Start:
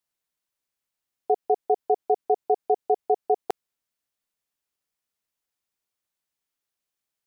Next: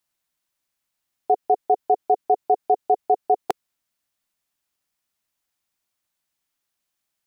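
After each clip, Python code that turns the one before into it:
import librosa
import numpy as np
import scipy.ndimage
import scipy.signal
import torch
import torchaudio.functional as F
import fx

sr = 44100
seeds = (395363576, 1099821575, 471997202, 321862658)

y = fx.peak_eq(x, sr, hz=450.0, db=-9.0, octaves=0.25)
y = F.gain(torch.from_numpy(y), 5.5).numpy()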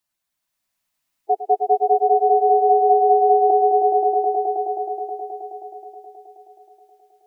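y = fx.spec_gate(x, sr, threshold_db=-10, keep='strong')
y = fx.echo_swell(y, sr, ms=106, loudest=5, wet_db=-5.0)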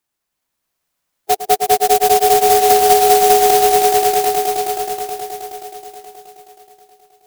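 y = fx.clock_jitter(x, sr, seeds[0], jitter_ms=0.098)
y = F.gain(torch.from_numpy(y), 4.0).numpy()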